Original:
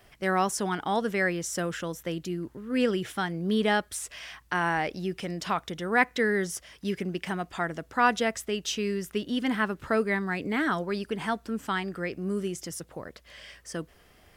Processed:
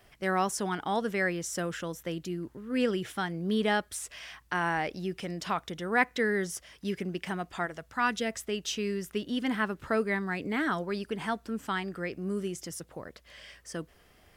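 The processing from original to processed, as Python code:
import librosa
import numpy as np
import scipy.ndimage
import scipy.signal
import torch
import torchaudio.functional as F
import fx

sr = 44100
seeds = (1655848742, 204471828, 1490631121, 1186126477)

y = fx.peak_eq(x, sr, hz=fx.line((7.65, 170.0), (8.3, 1200.0)), db=-12.0, octaves=1.0, at=(7.65, 8.3), fade=0.02)
y = y * librosa.db_to_amplitude(-2.5)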